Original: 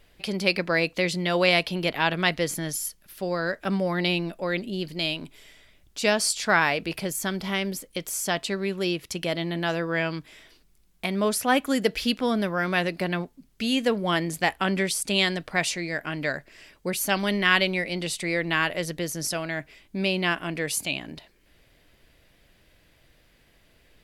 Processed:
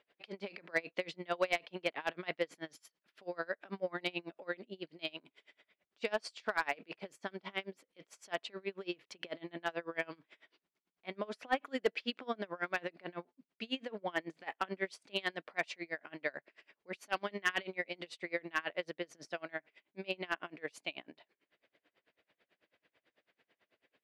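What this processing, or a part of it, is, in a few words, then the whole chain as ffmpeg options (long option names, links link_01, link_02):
helicopter radio: -af "highpass=350,lowpass=2900,aeval=exprs='val(0)*pow(10,-29*(0.5-0.5*cos(2*PI*9.1*n/s))/20)':channel_layout=same,asoftclip=type=hard:threshold=-16.5dB,volume=-4.5dB"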